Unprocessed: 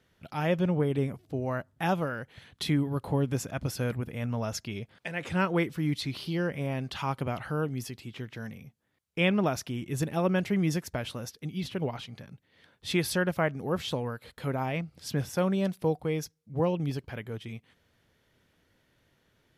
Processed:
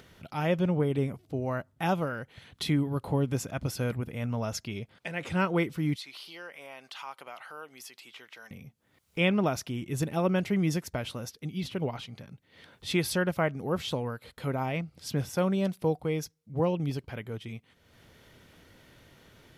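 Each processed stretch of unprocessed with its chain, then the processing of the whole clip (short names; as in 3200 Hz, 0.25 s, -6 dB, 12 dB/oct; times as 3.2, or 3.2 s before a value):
5.96–8.51 HPF 800 Hz + compressor 1.5:1, threshold -47 dBFS
whole clip: notch 1700 Hz, Q 16; upward compressor, threshold -44 dBFS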